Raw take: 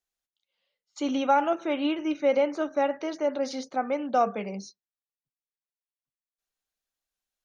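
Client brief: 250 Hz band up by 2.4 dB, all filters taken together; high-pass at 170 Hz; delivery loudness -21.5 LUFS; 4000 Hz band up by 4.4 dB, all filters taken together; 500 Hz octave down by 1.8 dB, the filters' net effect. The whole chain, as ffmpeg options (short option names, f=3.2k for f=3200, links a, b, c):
-af "highpass=170,equalizer=f=250:t=o:g=4.5,equalizer=f=500:t=o:g=-3,equalizer=f=4k:t=o:g=6.5,volume=5.5dB"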